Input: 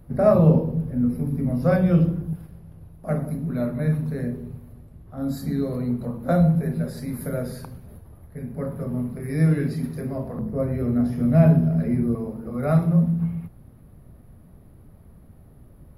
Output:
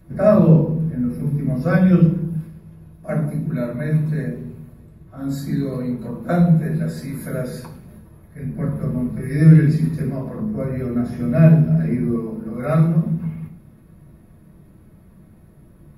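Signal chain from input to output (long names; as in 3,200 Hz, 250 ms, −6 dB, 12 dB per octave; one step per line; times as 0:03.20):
0:08.41–0:10.10: low-shelf EQ 160 Hz +9.5 dB
convolution reverb RT60 0.40 s, pre-delay 3 ms, DRR −5.5 dB
level −2.5 dB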